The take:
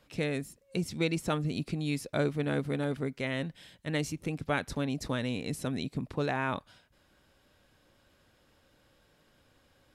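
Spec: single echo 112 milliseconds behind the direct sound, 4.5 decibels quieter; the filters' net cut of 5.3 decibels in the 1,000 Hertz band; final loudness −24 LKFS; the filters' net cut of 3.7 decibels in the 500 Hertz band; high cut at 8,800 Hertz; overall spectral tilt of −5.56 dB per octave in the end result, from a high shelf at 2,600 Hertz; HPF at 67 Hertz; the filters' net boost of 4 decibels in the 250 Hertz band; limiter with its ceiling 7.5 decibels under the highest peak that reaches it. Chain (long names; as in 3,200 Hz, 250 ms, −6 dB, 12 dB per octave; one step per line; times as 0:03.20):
high-pass filter 67 Hz
low-pass filter 8,800 Hz
parametric band 250 Hz +7 dB
parametric band 500 Hz −5.5 dB
parametric band 1,000 Hz −7 dB
high-shelf EQ 2,600 Hz +6 dB
brickwall limiter −21.5 dBFS
single-tap delay 112 ms −4.5 dB
level +7.5 dB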